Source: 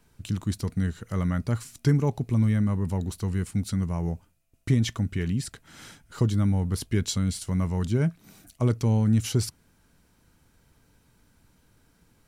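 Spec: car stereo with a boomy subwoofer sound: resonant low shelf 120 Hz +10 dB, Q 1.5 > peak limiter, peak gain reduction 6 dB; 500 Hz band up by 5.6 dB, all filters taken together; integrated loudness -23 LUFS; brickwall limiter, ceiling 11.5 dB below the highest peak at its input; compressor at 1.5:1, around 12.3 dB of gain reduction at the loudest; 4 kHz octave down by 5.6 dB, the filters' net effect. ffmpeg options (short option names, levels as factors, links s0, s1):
-af "equalizer=f=500:t=o:g=8,equalizer=f=4000:t=o:g=-7.5,acompressor=threshold=0.00251:ratio=1.5,alimiter=level_in=2.99:limit=0.0631:level=0:latency=1,volume=0.335,lowshelf=f=120:t=q:w=1.5:g=10,volume=7.08,alimiter=limit=0.2:level=0:latency=1"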